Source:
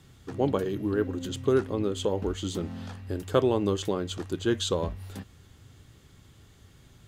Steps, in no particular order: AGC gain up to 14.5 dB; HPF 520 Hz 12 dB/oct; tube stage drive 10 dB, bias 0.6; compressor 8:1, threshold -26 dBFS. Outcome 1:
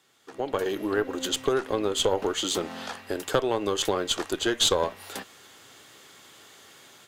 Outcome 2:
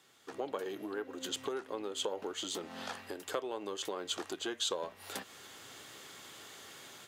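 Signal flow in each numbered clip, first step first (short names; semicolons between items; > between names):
compressor > HPF > AGC > tube stage; AGC > compressor > tube stage > HPF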